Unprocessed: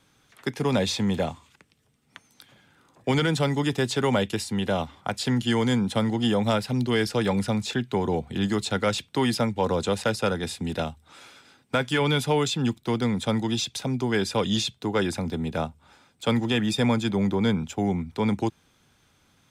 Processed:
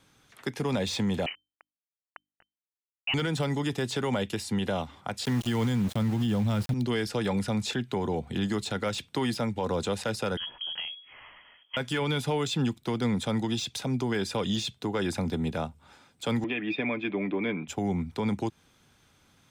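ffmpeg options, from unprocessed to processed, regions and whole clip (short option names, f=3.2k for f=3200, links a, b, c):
-filter_complex "[0:a]asettb=1/sr,asplit=3[a][b][c];[a]atrim=end=1.264[d];[b]atrim=start=1.26:end=3.14,asetpts=PTS-STARTPTS,afade=t=in:d=0.004:c=qsin,afade=t=out:st=1.876:d=0.004:c=qsin,aeval=exprs='val(0)*gte(abs(val(0)),0.0119)':c=same,lowpass=f=2.6k:t=q:w=0.5098,lowpass=f=2.6k:t=q:w=0.6013,lowpass=f=2.6k:t=q:w=0.9,lowpass=f=2.6k:t=q:w=2.563,afreqshift=-3100,bandreject=f=50:t=h:w=6,bandreject=f=100:t=h:w=6,bandreject=f=150:t=h:w=6,bandreject=f=200:t=h:w=6,bandreject=f=250:t=h:w=6,bandreject=f=300:t=h:w=6[e];[c]atrim=start=3.136[f];[d][e]acrossfade=d=0.004:c1=hsin:c2=qsin[g];[g][f]acrossfade=d=0.004:c1=qsin:c2=hsin,asettb=1/sr,asplit=3[h][i][j];[h]atrim=end=5.254[k];[i]atrim=start=5.25:end=6.74,asetpts=PTS-STARTPTS,afade=t=in:d=0.004:c=qsin,afade=t=out:st=1.486:d=0.004:c=qsin,asubboost=boost=9.5:cutoff=220,aeval=exprs='val(0)*gte(abs(val(0)),0.0282)':c=same[l];[j]atrim=start=6.736[m];[k][l]acrossfade=d=0.004:c1=hsin:c2=qsin[n];[n][m]acrossfade=d=0.004:c1=qsin:c2=hsin,asettb=1/sr,asplit=3[o][p][q];[o]atrim=end=10.374[r];[p]atrim=start=10.37:end=11.77,asetpts=PTS-STARTPTS,afade=t=in:d=0.004:c=qsin,afade=t=out:st=1.396:d=0.004:c=qsin,lowshelf=f=110:g=10.5,acompressor=threshold=-36dB:ratio=2.5:attack=3.2:release=140:knee=1:detection=peak,lowpass=f=2.9k:t=q:w=0.5098,lowpass=f=2.9k:t=q:w=0.6013,lowpass=f=2.9k:t=q:w=0.9,lowpass=f=2.9k:t=q:w=2.563,afreqshift=-3400[s];[q]atrim=start=11.766[t];[r][s]acrossfade=d=0.004:c1=hsin:c2=qsin[u];[u][t]acrossfade=d=0.004:c1=qsin:c2=hsin,asettb=1/sr,asplit=3[v][w][x];[v]atrim=end=16.444[y];[w]atrim=start=16.44:end=17.68,asetpts=PTS-STARTPTS,afade=t=in:d=0.004:c=qsin,afade=t=out:st=1.236:d=0.004:c=qsin,highpass=290,equalizer=f=320:t=q:w=4:g=5,equalizer=f=470:t=q:w=4:g=-5,equalizer=f=870:t=q:w=4:g=-9,equalizer=f=1.4k:t=q:w=4:g=-7,equalizer=f=2.4k:t=q:w=4:g=9,lowpass=f=2.6k:w=0.5412,lowpass=f=2.6k:w=1.3066,aecho=1:1:6.9:0.36,atrim=end_sample=54684[z];[x]atrim=start=17.676[aa];[y][z]acrossfade=d=0.004:c1=hsin:c2=qsin[ab];[ab][aa]acrossfade=d=0.004:c1=qsin:c2=hsin,deesser=0.65,alimiter=limit=-20dB:level=0:latency=1:release=139"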